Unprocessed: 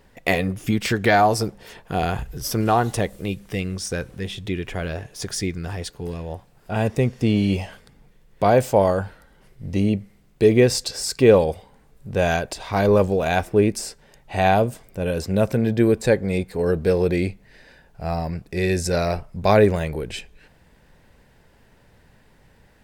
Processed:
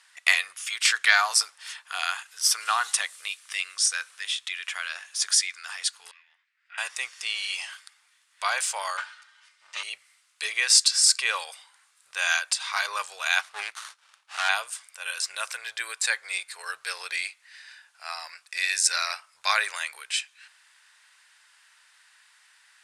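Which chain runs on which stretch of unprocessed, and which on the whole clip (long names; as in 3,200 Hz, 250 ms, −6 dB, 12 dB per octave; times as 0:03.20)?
0:06.11–0:06.78: four-pole ladder band-pass 2,200 Hz, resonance 65% + spectral tilt −2.5 dB per octave
0:08.97–0:09.83: lower of the sound and its delayed copy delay 8.2 ms + band-pass filter 140–6,400 Hz + comb filter 3.3 ms, depth 45%
0:13.41–0:14.49: parametric band 7,500 Hz −8 dB 0.46 octaves + windowed peak hold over 17 samples
whole clip: elliptic band-pass filter 1,200–9,700 Hz, stop band 60 dB; high-shelf EQ 4,100 Hz +9 dB; level +2.5 dB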